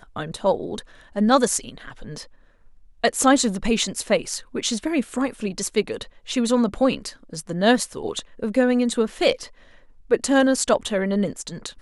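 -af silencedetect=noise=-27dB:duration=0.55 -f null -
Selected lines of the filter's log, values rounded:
silence_start: 2.21
silence_end: 3.04 | silence_duration: 0.83
silence_start: 9.45
silence_end: 10.11 | silence_duration: 0.66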